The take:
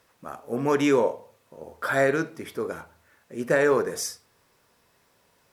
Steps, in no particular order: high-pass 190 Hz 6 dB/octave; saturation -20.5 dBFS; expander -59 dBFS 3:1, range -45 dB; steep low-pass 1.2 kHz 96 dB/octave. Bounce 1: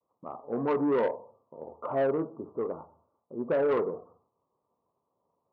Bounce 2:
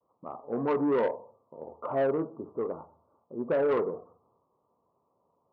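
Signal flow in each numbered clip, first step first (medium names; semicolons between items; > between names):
steep low-pass > saturation > expander > high-pass; expander > steep low-pass > saturation > high-pass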